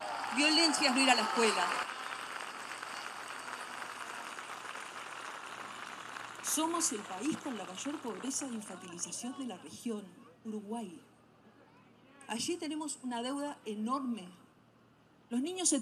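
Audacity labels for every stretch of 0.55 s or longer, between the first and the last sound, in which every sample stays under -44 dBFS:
10.970000	12.210000	silence
14.290000	15.310000	silence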